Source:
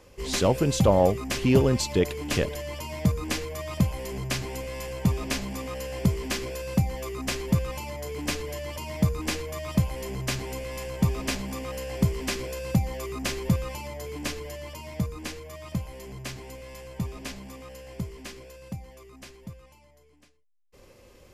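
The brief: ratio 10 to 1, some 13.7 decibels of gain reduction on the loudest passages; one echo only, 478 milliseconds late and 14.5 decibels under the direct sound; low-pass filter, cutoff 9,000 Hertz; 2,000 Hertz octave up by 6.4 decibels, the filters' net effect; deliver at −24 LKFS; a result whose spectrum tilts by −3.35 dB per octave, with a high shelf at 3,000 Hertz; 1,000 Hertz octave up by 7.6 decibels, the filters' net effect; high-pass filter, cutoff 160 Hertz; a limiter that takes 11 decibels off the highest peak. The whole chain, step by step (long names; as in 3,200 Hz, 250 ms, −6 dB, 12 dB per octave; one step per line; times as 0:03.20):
high-pass filter 160 Hz
low-pass filter 9,000 Hz
parametric band 1,000 Hz +8 dB
parametric band 2,000 Hz +3.5 dB
high-shelf EQ 3,000 Hz +6 dB
downward compressor 10 to 1, threshold −26 dBFS
brickwall limiter −22.5 dBFS
single-tap delay 478 ms −14.5 dB
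level +10 dB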